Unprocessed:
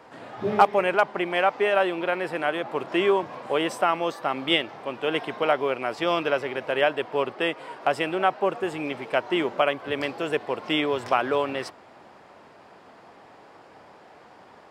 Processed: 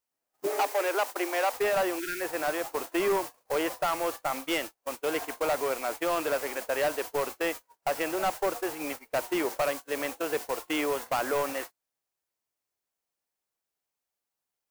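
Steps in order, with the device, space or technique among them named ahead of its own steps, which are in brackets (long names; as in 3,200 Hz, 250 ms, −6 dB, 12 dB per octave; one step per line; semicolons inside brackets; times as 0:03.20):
aircraft radio (band-pass filter 300–2,700 Hz; hard clipping −21 dBFS, distortion −9 dB; white noise bed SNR 10 dB; noise gate −32 dBFS, range −36 dB)
0:01.99–0:02.21: gain on a spectral selection 400–1,300 Hz −26 dB
noise reduction from a noise print of the clip's start 11 dB
0:00.46–0:01.53: Butterworth high-pass 260 Hz 96 dB per octave
parametric band 3,500 Hz −3 dB 0.56 octaves
level −1.5 dB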